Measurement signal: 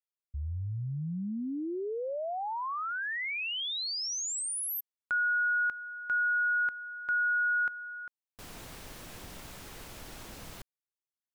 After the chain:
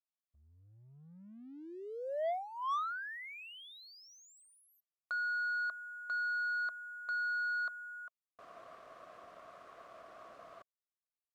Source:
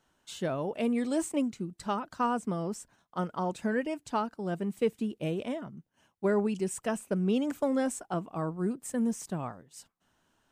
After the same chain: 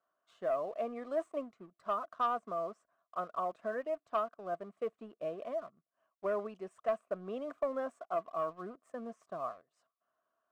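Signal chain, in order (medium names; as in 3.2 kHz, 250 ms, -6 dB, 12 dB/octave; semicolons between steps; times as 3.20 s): two resonant band-passes 870 Hz, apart 0.75 oct; waveshaping leveller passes 1; trim +1 dB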